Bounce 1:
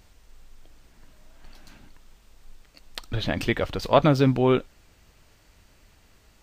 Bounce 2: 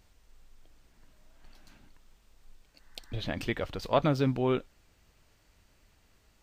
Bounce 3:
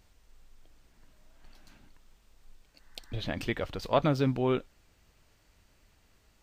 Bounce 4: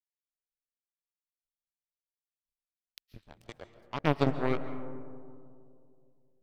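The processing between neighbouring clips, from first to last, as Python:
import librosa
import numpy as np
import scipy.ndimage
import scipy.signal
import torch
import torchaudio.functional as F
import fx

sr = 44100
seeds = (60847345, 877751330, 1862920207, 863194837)

y1 = fx.spec_repair(x, sr, seeds[0], start_s=2.62, length_s=0.57, low_hz=820.0, high_hz=2100.0, source='both')
y1 = y1 * 10.0 ** (-7.5 / 20.0)
y2 = y1
y3 = fx.phaser_stages(y2, sr, stages=4, low_hz=220.0, high_hz=4700.0, hz=0.49, feedback_pct=0)
y3 = fx.power_curve(y3, sr, exponent=3.0)
y3 = fx.rev_freeverb(y3, sr, rt60_s=2.4, hf_ratio=0.25, predelay_ms=100, drr_db=10.5)
y3 = y3 * 10.0 ** (8.0 / 20.0)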